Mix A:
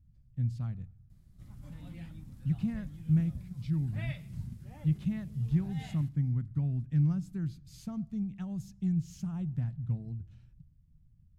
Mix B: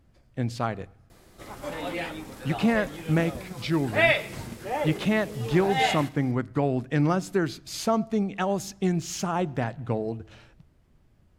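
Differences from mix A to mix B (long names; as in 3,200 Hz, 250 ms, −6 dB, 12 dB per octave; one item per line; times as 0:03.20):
background: send +6.5 dB
master: remove drawn EQ curve 160 Hz 0 dB, 430 Hz −30 dB, 12,000 Hz −18 dB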